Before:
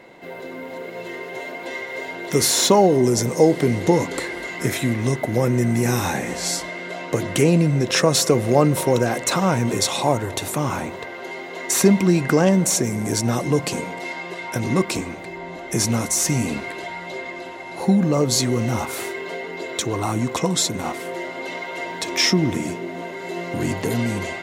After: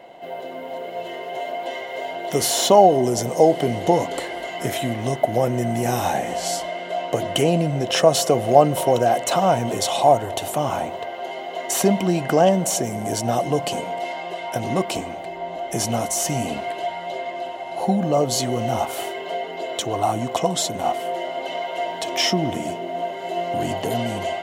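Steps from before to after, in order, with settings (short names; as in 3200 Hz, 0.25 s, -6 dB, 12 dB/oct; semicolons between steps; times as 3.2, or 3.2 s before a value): high shelf 11000 Hz +5.5 dB; small resonant body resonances 690/3000 Hz, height 16 dB, ringing for 20 ms; gain -5 dB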